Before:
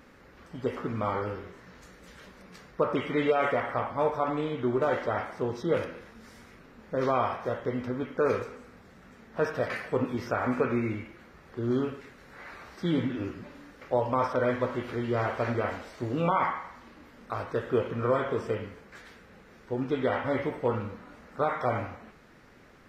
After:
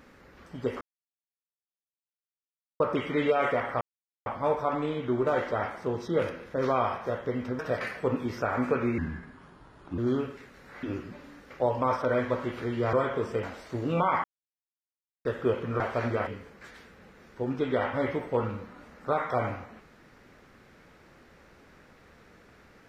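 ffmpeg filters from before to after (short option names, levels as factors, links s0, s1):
-filter_complex "[0:a]asplit=15[s0][s1][s2][s3][s4][s5][s6][s7][s8][s9][s10][s11][s12][s13][s14];[s0]atrim=end=0.81,asetpts=PTS-STARTPTS,afade=t=out:st=0.806:d=0.004:c=hsin[s15];[s1]atrim=start=0.81:end=2.8,asetpts=PTS-STARTPTS,volume=0[s16];[s2]atrim=start=2.8:end=3.81,asetpts=PTS-STARTPTS,afade=t=in:d=0.004:c=hsin,afade=t=out:st=1.006:d=0.004:c=hsin,apad=pad_dur=0.45[s17];[s3]atrim=start=3.81:end=6.092,asetpts=PTS-STARTPTS,afade=t=in:d=0.004:c=hsin[s18];[s4]atrim=start=6.928:end=7.982[s19];[s5]atrim=start=9.478:end=10.874[s20];[s6]atrim=start=10.87:end=11.62,asetpts=PTS-STARTPTS,asetrate=33075,aresample=44100[s21];[s7]atrim=start=11.616:end=12.472[s22];[s8]atrim=start=13.138:end=15.242[s23];[s9]atrim=start=18.078:end=18.582[s24];[s10]atrim=start=15.708:end=16.52,asetpts=PTS-STARTPTS,afade=t=out:st=0.808:d=0.004:c=hsin[s25];[s11]atrim=start=16.52:end=17.53,asetpts=PTS-STARTPTS,volume=0[s26];[s12]atrim=start=17.53:end=18.082,asetpts=PTS-STARTPTS,afade=t=in:d=0.004:c=hsin[s27];[s13]atrim=start=15.238:end=15.712[s28];[s14]atrim=start=18.578[s29];[s15][s16][s17][s18]concat=n=4:v=0:a=1[s30];[s30][s19]acrossfade=d=0.004:c1=hsin:c2=hsin[s31];[s31][s20]acrossfade=d=0.004:c1=hsin:c2=hsin[s32];[s32][s21]acrossfade=d=0.004:c1=hsin:c2=hsin[s33];[s33][s22]acrossfade=d=0.004:c1=hsin:c2=hsin[s34];[s34][s23]acrossfade=d=0.004:c1=hsin:c2=hsin[s35];[s35][s24]acrossfade=d=0.004:c1=hsin:c2=hsin[s36];[s25][s26][s27]concat=n=3:v=0:a=1[s37];[s36][s37]acrossfade=d=0.004:c1=hsin:c2=hsin[s38];[s38][s28]acrossfade=d=0.004:c1=hsin:c2=hsin[s39];[s39][s29]acrossfade=d=0.004:c1=hsin:c2=hsin"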